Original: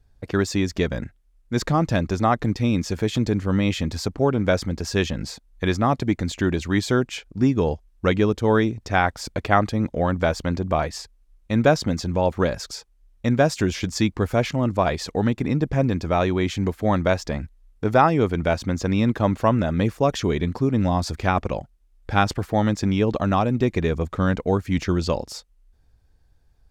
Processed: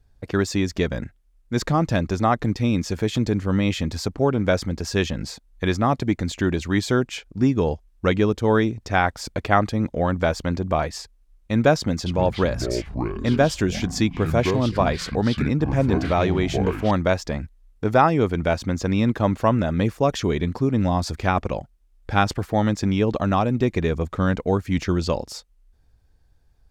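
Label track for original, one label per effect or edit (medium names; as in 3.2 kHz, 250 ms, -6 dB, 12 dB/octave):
11.790000	16.910000	ever faster or slower copies 269 ms, each echo -7 st, echoes 3, each echo -6 dB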